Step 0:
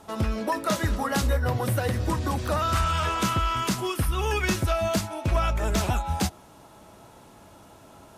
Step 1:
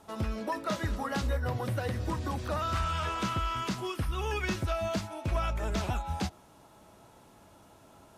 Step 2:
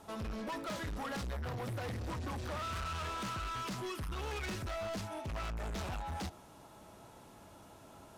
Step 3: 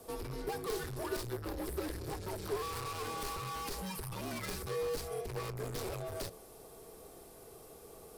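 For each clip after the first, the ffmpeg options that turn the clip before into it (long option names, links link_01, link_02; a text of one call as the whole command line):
ffmpeg -i in.wav -filter_complex "[0:a]acrossover=split=6000[link_01][link_02];[link_02]acompressor=threshold=-47dB:ratio=4:attack=1:release=60[link_03];[link_01][link_03]amix=inputs=2:normalize=0,volume=-6.5dB" out.wav
ffmpeg -i in.wav -af "asoftclip=type=tanh:threshold=-38dB,volume=1dB" out.wav
ffmpeg -i in.wav -af "aexciter=amount=4.3:drive=2.3:freq=4600,afreqshift=-180,equalizer=frequency=100:width_type=o:width=0.67:gain=-6,equalizer=frequency=400:width_type=o:width=0.67:gain=11,equalizer=frequency=6300:width_type=o:width=0.67:gain=-7,volume=-1.5dB" out.wav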